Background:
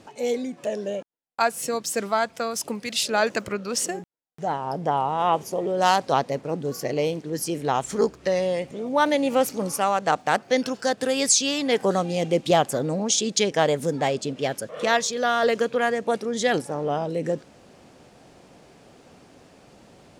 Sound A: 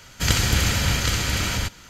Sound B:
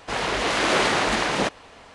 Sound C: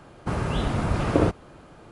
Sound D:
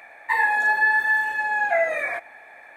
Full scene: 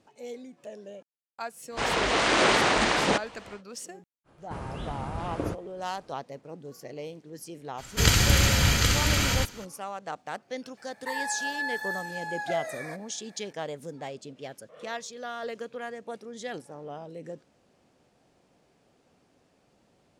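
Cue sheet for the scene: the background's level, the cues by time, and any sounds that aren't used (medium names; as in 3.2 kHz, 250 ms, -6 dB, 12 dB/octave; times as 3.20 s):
background -14.5 dB
1.69 s: add B -1 dB, fades 0.10 s + brick-wall FIR low-pass 9.6 kHz
4.24 s: add C -11 dB, fades 0.05 s
7.77 s: add A -0.5 dB, fades 0.02 s
10.77 s: add D -10.5 dB + resonant high shelf 3.6 kHz +9.5 dB, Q 3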